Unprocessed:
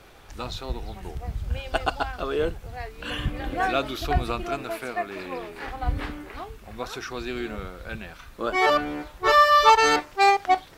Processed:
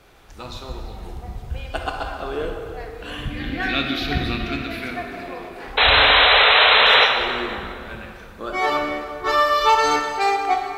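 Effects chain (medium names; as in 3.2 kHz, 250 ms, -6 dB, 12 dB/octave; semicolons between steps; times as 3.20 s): 3.30–4.91 s: graphic EQ 125/250/500/1000/2000/4000/8000 Hz +3/+10/-5/-8/+10/+10/-8 dB; 5.77–7.06 s: painted sound noise 410–4100 Hz -13 dBFS; plate-style reverb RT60 2.5 s, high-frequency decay 0.65×, DRR 1.5 dB; trim -2.5 dB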